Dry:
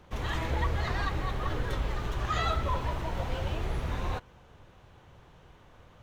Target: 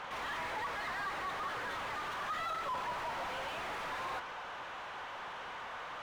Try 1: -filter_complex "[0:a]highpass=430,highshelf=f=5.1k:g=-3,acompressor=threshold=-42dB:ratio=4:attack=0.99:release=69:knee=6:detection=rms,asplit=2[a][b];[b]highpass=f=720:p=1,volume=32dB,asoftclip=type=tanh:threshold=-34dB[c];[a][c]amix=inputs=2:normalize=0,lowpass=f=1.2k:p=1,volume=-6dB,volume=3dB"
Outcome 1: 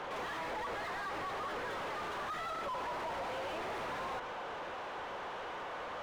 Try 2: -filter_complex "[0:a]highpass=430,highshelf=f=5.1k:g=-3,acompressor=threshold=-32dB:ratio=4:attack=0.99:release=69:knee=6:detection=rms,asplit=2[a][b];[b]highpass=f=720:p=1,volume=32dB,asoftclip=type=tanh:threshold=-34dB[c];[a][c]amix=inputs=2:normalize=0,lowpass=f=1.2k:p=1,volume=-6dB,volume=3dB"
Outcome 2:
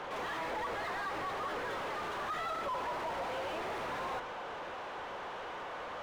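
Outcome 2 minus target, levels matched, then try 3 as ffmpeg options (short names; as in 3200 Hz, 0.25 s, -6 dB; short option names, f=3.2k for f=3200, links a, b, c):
500 Hz band +5.0 dB
-filter_complex "[0:a]highpass=950,highshelf=f=5.1k:g=-3,acompressor=threshold=-32dB:ratio=4:attack=0.99:release=69:knee=6:detection=rms,asplit=2[a][b];[b]highpass=f=720:p=1,volume=32dB,asoftclip=type=tanh:threshold=-34dB[c];[a][c]amix=inputs=2:normalize=0,lowpass=f=1.2k:p=1,volume=-6dB,volume=3dB"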